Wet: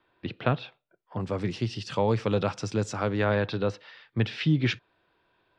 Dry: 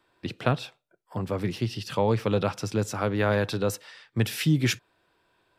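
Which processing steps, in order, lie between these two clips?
low-pass filter 3,800 Hz 24 dB per octave, from 0:01.20 7,600 Hz, from 0:03.24 4,200 Hz
level −1 dB

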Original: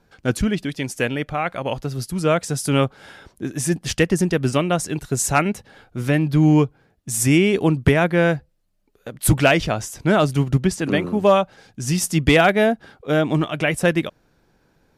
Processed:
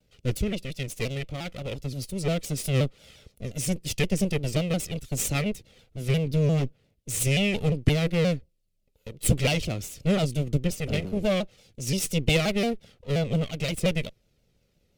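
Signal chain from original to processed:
lower of the sound and its delayed copy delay 1.5 ms
flat-topped bell 1,100 Hz −13.5 dB
pitch modulation by a square or saw wave saw down 5.7 Hz, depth 160 cents
level −4 dB

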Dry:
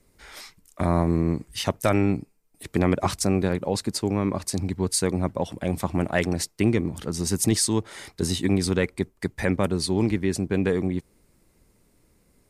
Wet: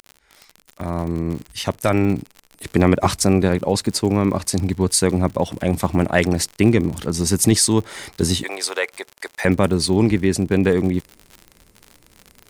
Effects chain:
fade in at the beginning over 2.75 s
0:08.43–0:09.45: high-pass filter 550 Hz 24 dB per octave
surface crackle 65 per second −34 dBFS
level +6.5 dB

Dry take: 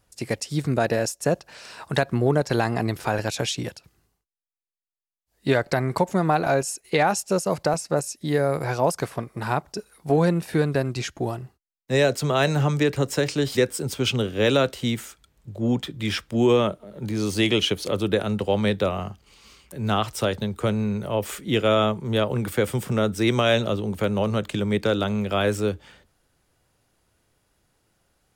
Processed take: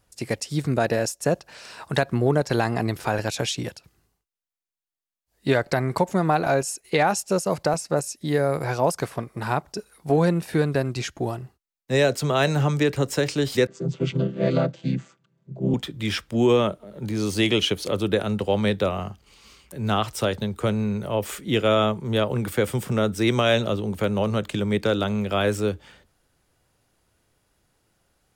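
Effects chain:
0:13.67–0:15.74: channel vocoder with a chord as carrier major triad, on C3

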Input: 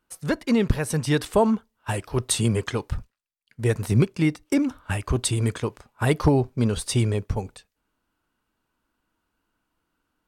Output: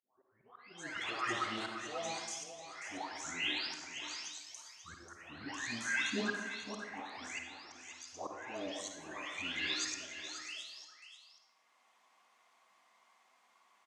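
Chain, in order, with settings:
every frequency bin delayed by itself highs late, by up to 473 ms
high-pass filter 1,000 Hz 12 dB per octave
high-shelf EQ 2,300 Hz +5.5 dB
reversed playback
downward compressor 6 to 1, threshold −40 dBFS, peak gain reduction 23.5 dB
reversed playback
volume swells 753 ms
automatic gain control gain up to 5.5 dB
wrong playback speed 45 rpm record played at 33 rpm
high-frequency loss of the air 84 metres
single-tap delay 538 ms −10.5 dB
on a send at −3.5 dB: convolution reverb RT60 1.0 s, pre-delay 46 ms
on the sum: level +4 dB

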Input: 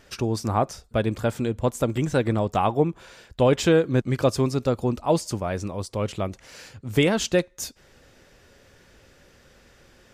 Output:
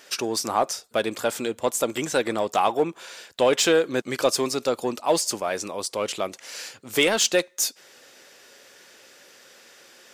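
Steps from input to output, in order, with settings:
high-pass filter 360 Hz 12 dB per octave
high-shelf EQ 2,500 Hz +8.5 dB
in parallel at −6 dB: hard clipping −24 dBFS, distortion −5 dB
on the sum: level −1 dB

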